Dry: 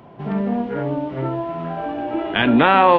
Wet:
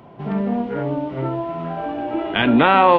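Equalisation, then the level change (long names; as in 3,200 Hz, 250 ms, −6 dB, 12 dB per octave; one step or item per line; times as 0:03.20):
notch filter 1,700 Hz, Q 20
0.0 dB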